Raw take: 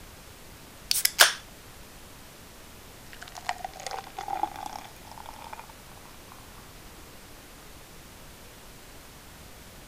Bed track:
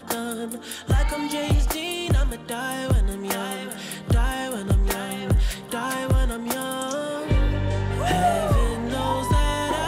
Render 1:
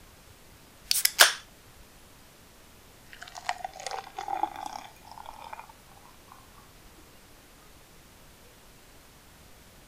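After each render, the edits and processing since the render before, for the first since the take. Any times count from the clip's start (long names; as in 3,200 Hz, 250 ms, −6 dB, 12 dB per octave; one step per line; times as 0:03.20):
noise reduction from a noise print 6 dB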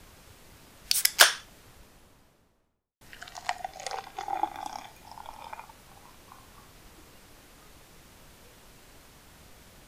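0:01.51–0:03.01: fade out and dull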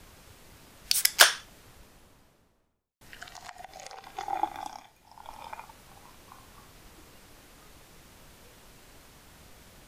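0:03.24–0:04.09: downward compressor 10 to 1, threshold −39 dBFS
0:04.62–0:05.32: duck −9.5 dB, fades 0.33 s quadratic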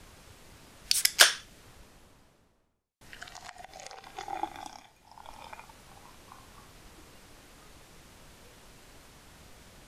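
low-pass filter 12,000 Hz 12 dB per octave
dynamic equaliser 920 Hz, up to −6 dB, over −47 dBFS, Q 1.3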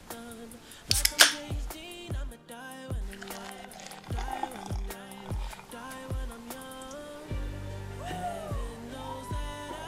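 mix in bed track −15 dB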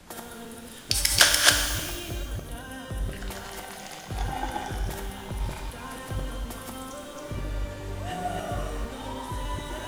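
delay that plays each chunk backwards 150 ms, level −0.5 dB
reverb with rising layers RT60 1.3 s, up +12 semitones, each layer −8 dB, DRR 4.5 dB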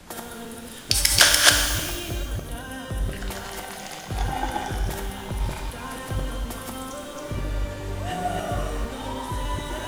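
level +4 dB
brickwall limiter −1 dBFS, peak gain reduction 2.5 dB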